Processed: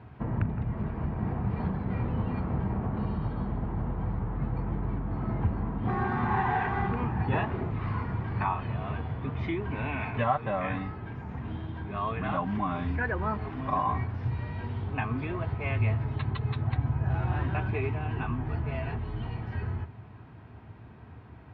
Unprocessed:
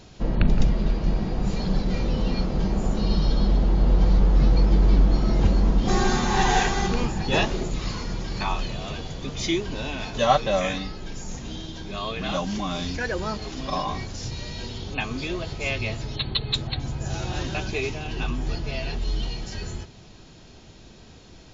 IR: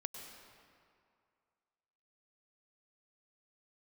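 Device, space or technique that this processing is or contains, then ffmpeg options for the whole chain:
bass amplifier: -filter_complex "[0:a]acompressor=threshold=-22dB:ratio=4,highpass=f=64:w=0.5412,highpass=f=64:w=1.3066,equalizer=f=80:t=q:w=4:g=4,equalizer=f=110:t=q:w=4:g=8,equalizer=f=180:t=q:w=4:g=-4,equalizer=f=350:t=q:w=4:g=-5,equalizer=f=540:t=q:w=4:g=-8,equalizer=f=1k:t=q:w=4:g=4,lowpass=f=2k:w=0.5412,lowpass=f=2k:w=1.3066,asettb=1/sr,asplit=3[a][b][c];[a]atrim=end=9.714[d];[b]atrim=start=9.71:end=10.24,asetpts=PTS-STARTPTS,afade=t=in:d=0.004:c=qsin,afade=t=out:st=0.526:d=0.004:c=qsin,equalizer=f=2.3k:w=4.1:g=12.5[e];[c]atrim=start=10.236[f];[d][e]acrossfade=d=0.004:c1=hsin:c2=qsin[g];[g][f]acrossfade=d=0.004:c1=qsin:c2=hsin"

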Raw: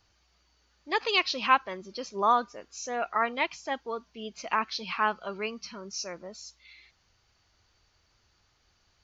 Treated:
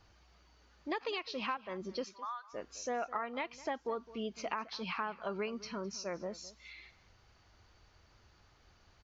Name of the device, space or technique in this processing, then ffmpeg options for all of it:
serial compression, peaks first: -filter_complex "[0:a]acompressor=threshold=-33dB:ratio=6,acompressor=threshold=-47dB:ratio=1.5,asettb=1/sr,asplit=3[a][b][c];[a]atrim=end=2.044[d];[b]atrim=start=2.04:end=2.53,asetpts=PTS-STARTPTS,afade=t=in:d=0.004:c=qsin,afade=t=out:st=0.486:d=0.004:c=qsin,highpass=f=1.1k:w=0.5412,highpass=f=1.1k:w=1.3066[e];[c]atrim=start=2.526[f];[d][e]acrossfade=d=0.004:c1=hsin:c2=qsin[g];[g][f]acrossfade=d=0.004:c1=qsin:c2=hsin,highshelf=f=2.7k:g=-10,asplit=2[h][i];[i]adelay=209.9,volume=-18dB,highshelf=f=4k:g=-4.72[j];[h][j]amix=inputs=2:normalize=0,volume=6dB"

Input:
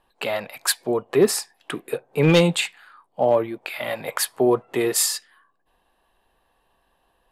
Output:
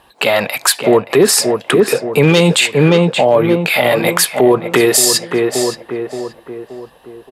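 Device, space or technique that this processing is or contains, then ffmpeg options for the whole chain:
mastering chain: -filter_complex "[0:a]highpass=54,equalizer=f=5.9k:t=o:w=3:g=3.5,asplit=2[a][b];[b]adelay=575,lowpass=f=1.7k:p=1,volume=-9dB,asplit=2[c][d];[d]adelay=575,lowpass=f=1.7k:p=1,volume=0.48,asplit=2[e][f];[f]adelay=575,lowpass=f=1.7k:p=1,volume=0.48,asplit=2[g][h];[h]adelay=575,lowpass=f=1.7k:p=1,volume=0.48,asplit=2[i][j];[j]adelay=575,lowpass=f=1.7k:p=1,volume=0.48[k];[a][c][e][g][i][k]amix=inputs=6:normalize=0,acompressor=threshold=-21dB:ratio=2.5,asoftclip=type=hard:threshold=-12dB,alimiter=level_in=17.5dB:limit=-1dB:release=50:level=0:latency=1,volume=-1dB"

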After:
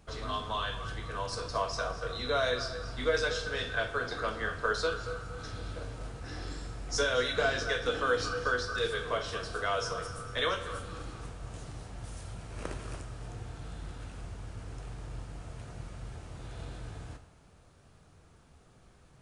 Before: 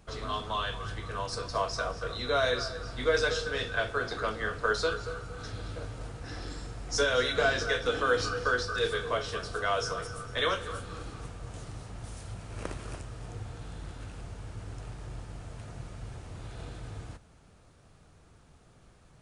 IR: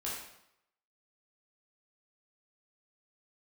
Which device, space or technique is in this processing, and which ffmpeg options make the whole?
compressed reverb return: -filter_complex "[0:a]asplit=2[a][b];[1:a]atrim=start_sample=2205[c];[b][c]afir=irnorm=-1:irlink=0,acompressor=threshold=-27dB:ratio=6,volume=-7dB[d];[a][d]amix=inputs=2:normalize=0,volume=-3.5dB"

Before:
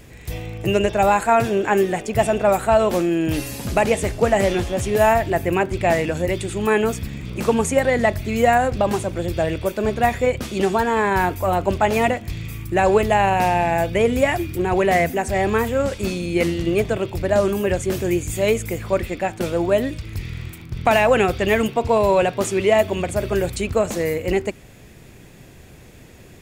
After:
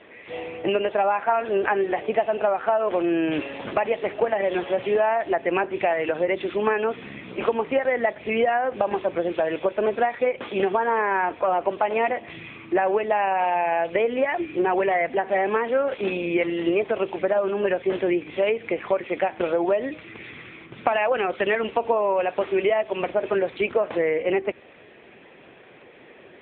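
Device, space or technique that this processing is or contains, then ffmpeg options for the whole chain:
voicemail: -af "highpass=410,lowpass=3.2k,acompressor=threshold=-24dB:ratio=10,volume=6.5dB" -ar 8000 -c:a libopencore_amrnb -b:a 6700

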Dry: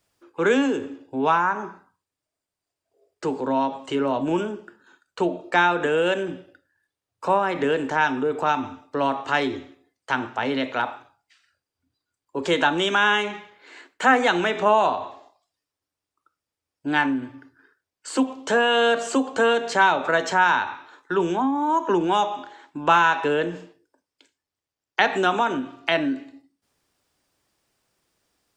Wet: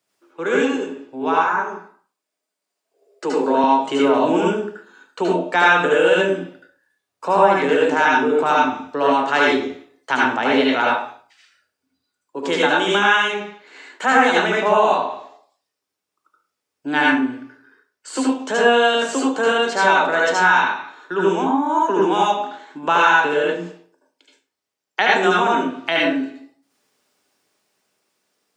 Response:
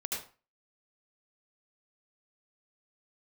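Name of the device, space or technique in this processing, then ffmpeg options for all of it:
far laptop microphone: -filter_complex "[1:a]atrim=start_sample=2205[a];[0:a][a]afir=irnorm=-1:irlink=0,highpass=190,dynaudnorm=f=330:g=9:m=11.5dB,asettb=1/sr,asplit=3[b][c][d];[b]atrim=end=1.474[e];[c]atrim=start=1.47:end=3.64,asetpts=PTS-STARTPTS,afade=t=in:d=0.004:c=qsin,afade=t=out:st=2.166:d=0.004:c=qsin,highpass=210[f];[d]atrim=start=3.636[g];[e][f]acrossfade=d=0.004:c1=hsin:c2=qsin[h];[h][g]acrossfade=d=0.004:c1=qsin:c2=hsin,volume=-1dB"

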